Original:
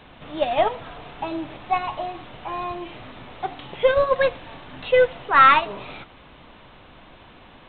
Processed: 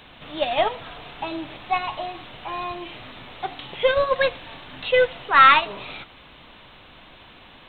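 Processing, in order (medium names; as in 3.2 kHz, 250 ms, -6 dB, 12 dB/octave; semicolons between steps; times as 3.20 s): treble shelf 2.4 kHz +11.5 dB; trim -2.5 dB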